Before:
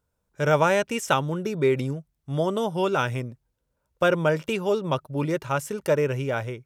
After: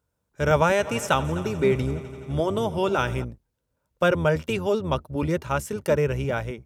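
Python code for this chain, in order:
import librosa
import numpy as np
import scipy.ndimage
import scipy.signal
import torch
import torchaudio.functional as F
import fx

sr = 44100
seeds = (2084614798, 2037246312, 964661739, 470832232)

y = fx.octave_divider(x, sr, octaves=1, level_db=-4.0)
y = scipy.signal.sosfilt(scipy.signal.butter(2, 55.0, 'highpass', fs=sr, output='sos'), y)
y = fx.echo_heads(y, sr, ms=85, heads='first and third', feedback_pct=70, wet_db=-19.0, at=(0.78, 3.23), fade=0.02)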